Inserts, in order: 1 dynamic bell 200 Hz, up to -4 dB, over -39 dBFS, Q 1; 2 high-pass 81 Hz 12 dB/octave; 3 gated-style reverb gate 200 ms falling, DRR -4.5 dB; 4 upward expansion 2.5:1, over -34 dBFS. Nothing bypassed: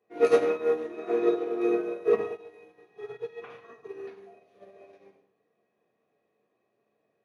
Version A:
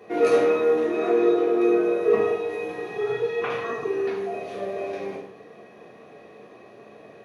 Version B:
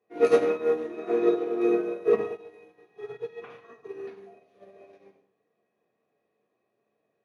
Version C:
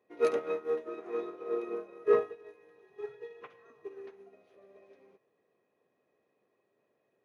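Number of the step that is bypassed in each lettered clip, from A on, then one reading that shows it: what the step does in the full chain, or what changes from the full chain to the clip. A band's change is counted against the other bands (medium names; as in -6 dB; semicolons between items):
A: 4, crest factor change -5.5 dB; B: 1, 125 Hz band +2.5 dB; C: 3, crest factor change +3.0 dB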